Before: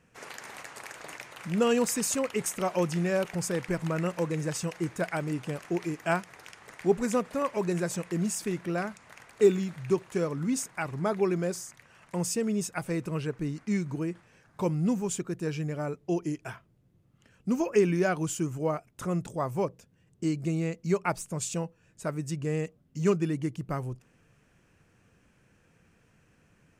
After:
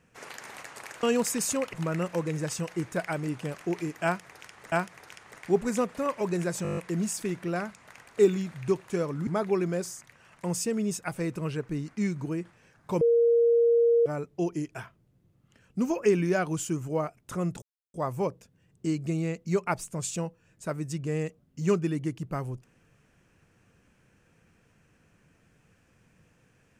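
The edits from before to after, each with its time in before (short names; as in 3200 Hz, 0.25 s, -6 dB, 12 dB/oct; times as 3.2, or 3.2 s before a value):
1.03–1.65 cut
2.35–3.77 cut
6.08–6.76 loop, 2 plays
7.99 stutter 0.02 s, 8 plays
10.49–10.97 cut
14.71–15.76 bleep 468 Hz -18 dBFS
19.32 insert silence 0.32 s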